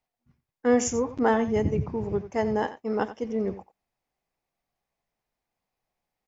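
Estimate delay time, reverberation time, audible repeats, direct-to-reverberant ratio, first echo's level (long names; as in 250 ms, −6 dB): 89 ms, no reverb audible, 1, no reverb audible, −14.0 dB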